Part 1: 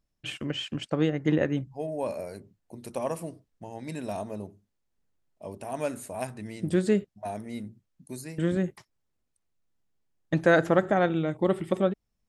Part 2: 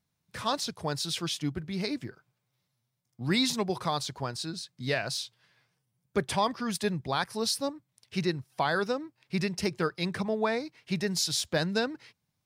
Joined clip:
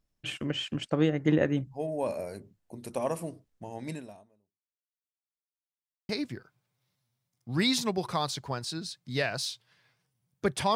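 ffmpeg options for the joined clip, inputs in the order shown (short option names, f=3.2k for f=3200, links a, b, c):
-filter_complex "[0:a]apad=whole_dur=10.75,atrim=end=10.75,asplit=2[a][b];[a]atrim=end=5.23,asetpts=PTS-STARTPTS,afade=t=out:st=3.92:d=1.31:c=exp[c];[b]atrim=start=5.23:end=6.09,asetpts=PTS-STARTPTS,volume=0[d];[1:a]atrim=start=1.81:end=6.47,asetpts=PTS-STARTPTS,afade=t=in:d=0.004:c=hsin[e];[c][d][e]concat=n=3:v=0:a=1"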